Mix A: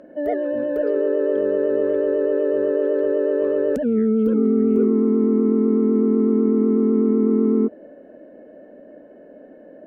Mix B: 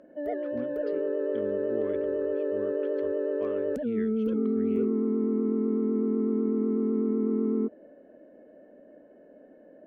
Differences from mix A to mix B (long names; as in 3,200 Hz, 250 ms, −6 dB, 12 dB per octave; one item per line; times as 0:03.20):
speech: add high-shelf EQ 3,300 Hz +7.5 dB
background −9.0 dB